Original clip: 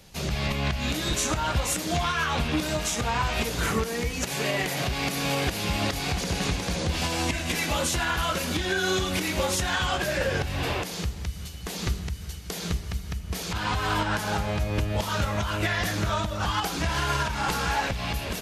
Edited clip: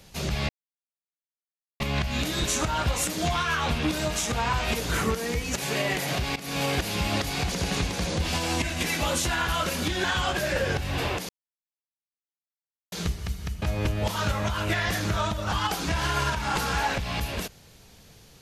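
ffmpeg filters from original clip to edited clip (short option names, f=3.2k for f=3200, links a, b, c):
-filter_complex "[0:a]asplit=7[a][b][c][d][e][f][g];[a]atrim=end=0.49,asetpts=PTS-STARTPTS,afade=t=out:st=0.486:d=0.004:c=hsin,apad=pad_dur=1.31[h];[b]atrim=start=0.49:end=5.05,asetpts=PTS-STARTPTS,afade=t=in:d=0.004:c=hsin,afade=t=out:st=4.556:d=0.004:c=hsin:silence=0.125893[i];[c]atrim=start=5.05:end=8.732,asetpts=PTS-STARTPTS,afade=t=in:d=0.34:c=qsin:silence=0.125893[j];[d]atrim=start=9.688:end=10.94,asetpts=PTS-STARTPTS,afade=t=out:st=1.248:d=0.004:c=hsin[k];[e]atrim=start=10.94:end=12.57,asetpts=PTS-STARTPTS,volume=0[l];[f]atrim=start=12.57:end=13.272,asetpts=PTS-STARTPTS,afade=t=in:d=0.004:c=hsin[m];[g]atrim=start=14.548[n];[h][i][j]concat=n=3:v=0:a=1[o];[k][l][m]concat=n=3:v=0:a=1[p];[o][p]acrossfade=d=0.004:c1=hsin:c2=hsin[q];[q][n]acrossfade=d=0.004:c1=hsin:c2=hsin"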